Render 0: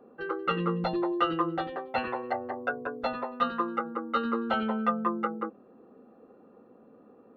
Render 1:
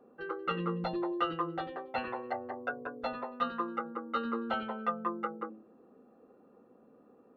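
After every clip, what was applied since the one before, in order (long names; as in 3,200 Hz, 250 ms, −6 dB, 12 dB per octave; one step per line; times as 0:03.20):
hum removal 109.1 Hz, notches 5
level −5 dB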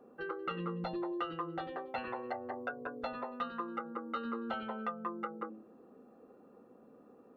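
downward compressor 3 to 1, threshold −38 dBFS, peak gain reduction 9.5 dB
level +1.5 dB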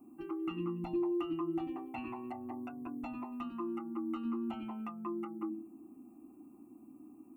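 drawn EQ curve 130 Hz 0 dB, 190 Hz −5 dB, 320 Hz +11 dB, 480 Hz −30 dB, 710 Hz −8 dB, 1,100 Hz −6 dB, 1,600 Hz −25 dB, 2,500 Hz 0 dB, 3,800 Hz −22 dB, 8,400 Hz +10 dB
level +3 dB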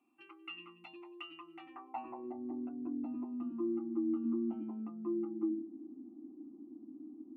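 band-pass filter sweep 2,700 Hz → 300 Hz, 0:01.51–0:02.40
level +5.5 dB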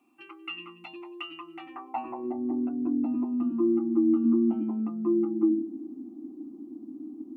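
dynamic equaliser 220 Hz, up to +3 dB, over −46 dBFS, Q 0.77
level +9 dB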